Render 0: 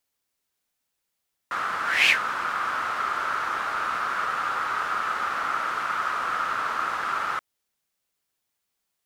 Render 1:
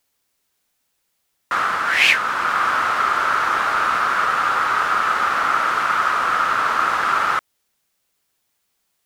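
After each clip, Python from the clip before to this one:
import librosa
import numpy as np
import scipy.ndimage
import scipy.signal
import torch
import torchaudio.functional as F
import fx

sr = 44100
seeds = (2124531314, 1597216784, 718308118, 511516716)

y = fx.rider(x, sr, range_db=3, speed_s=0.5)
y = F.gain(torch.from_numpy(y), 7.5).numpy()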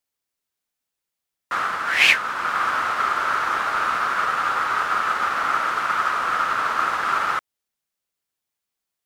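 y = fx.upward_expand(x, sr, threshold_db=-38.0, expansion=1.5)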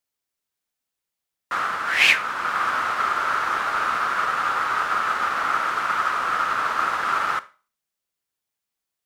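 y = fx.rev_schroeder(x, sr, rt60_s=0.36, comb_ms=28, drr_db=16.5)
y = F.gain(torch.from_numpy(y), -1.0).numpy()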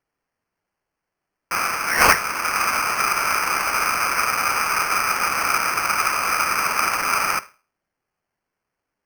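y = fx.sample_hold(x, sr, seeds[0], rate_hz=3700.0, jitter_pct=0)
y = F.gain(torch.from_numpy(y), 2.0).numpy()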